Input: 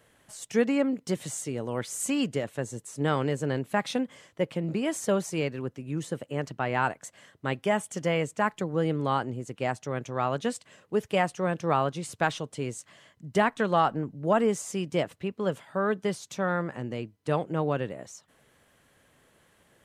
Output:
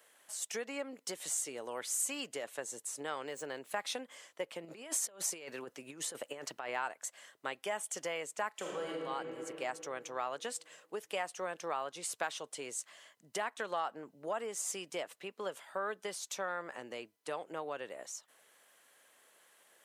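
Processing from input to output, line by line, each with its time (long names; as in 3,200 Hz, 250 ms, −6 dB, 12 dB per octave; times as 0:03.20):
0:03.23–0:03.71: running median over 3 samples
0:04.65–0:06.69: compressor whose output falls as the input rises −33 dBFS, ratio −0.5
0:08.51–0:08.96: thrown reverb, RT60 2.7 s, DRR −5 dB
whole clip: high-shelf EQ 5,700 Hz +7.5 dB; downward compressor, threshold −28 dBFS; high-pass filter 540 Hz 12 dB per octave; level −2.5 dB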